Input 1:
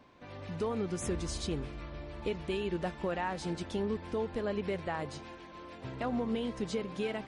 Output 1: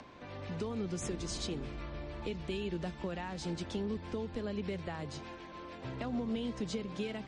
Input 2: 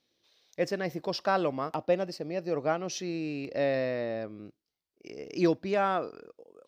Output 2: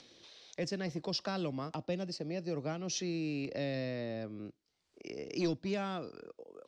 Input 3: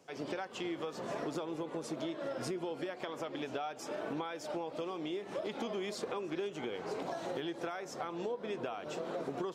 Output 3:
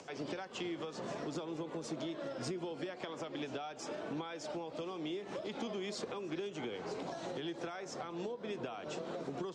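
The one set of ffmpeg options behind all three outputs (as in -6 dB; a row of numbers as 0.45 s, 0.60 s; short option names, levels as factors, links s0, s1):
-filter_complex "[0:a]acrossover=split=270|3000[s0][s1][s2];[s1]acompressor=threshold=0.00794:ratio=4[s3];[s0][s3][s2]amix=inputs=3:normalize=0,acrossover=split=210[s4][s5];[s4]aeval=exprs='0.0112*(abs(mod(val(0)/0.0112+3,4)-2)-1)':c=same[s6];[s6][s5]amix=inputs=2:normalize=0,acompressor=mode=upward:threshold=0.00447:ratio=2.5,lowpass=f=8100:w=0.5412,lowpass=f=8100:w=1.3066,volume=1.12"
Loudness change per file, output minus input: -3.0 LU, -7.0 LU, -2.0 LU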